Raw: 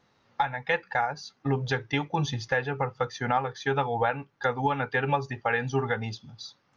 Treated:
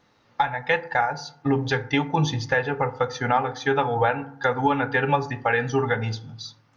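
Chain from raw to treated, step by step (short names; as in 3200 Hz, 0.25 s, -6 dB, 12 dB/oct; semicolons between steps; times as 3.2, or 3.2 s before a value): FDN reverb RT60 0.64 s, low-frequency decay 1.35×, high-frequency decay 0.4×, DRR 10.5 dB; gain +4 dB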